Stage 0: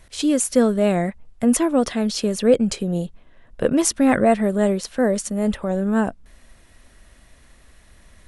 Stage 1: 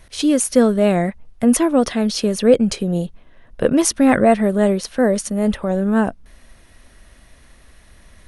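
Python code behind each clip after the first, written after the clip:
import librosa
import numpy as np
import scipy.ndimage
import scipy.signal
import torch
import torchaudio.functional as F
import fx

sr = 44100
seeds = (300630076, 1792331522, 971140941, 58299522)

y = fx.notch(x, sr, hz=7500.0, q=7.0)
y = y * 10.0 ** (3.0 / 20.0)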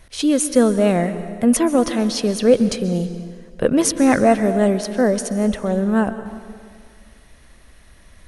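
y = fx.rev_plate(x, sr, seeds[0], rt60_s=2.0, hf_ratio=0.8, predelay_ms=115, drr_db=11.5)
y = y * 10.0 ** (-1.0 / 20.0)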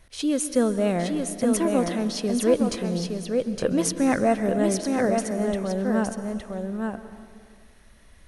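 y = x + 10.0 ** (-4.5 / 20.0) * np.pad(x, (int(864 * sr / 1000.0), 0))[:len(x)]
y = y * 10.0 ** (-7.0 / 20.0)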